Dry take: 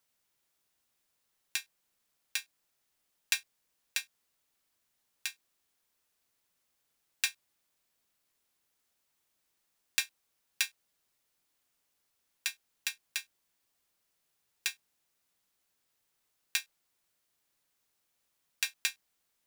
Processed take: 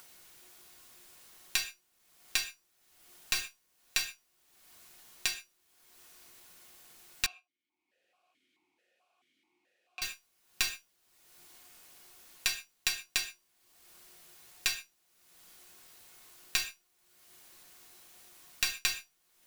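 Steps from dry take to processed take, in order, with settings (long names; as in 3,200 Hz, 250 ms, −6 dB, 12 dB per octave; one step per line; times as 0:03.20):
stylus tracing distortion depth 0.072 ms
downward compressor, threshold −30 dBFS, peak gain reduction 7 dB
leveller curve on the samples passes 1
upward compression, threshold −48 dBFS
tuned comb filter 360 Hz, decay 0.24 s, harmonics all, mix 70%
reverb whose tail is shaped and stops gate 160 ms falling, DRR 7.5 dB
boost into a limiter +23 dB
0:07.26–0:10.02: formant filter that steps through the vowels 4.6 Hz
level −8.5 dB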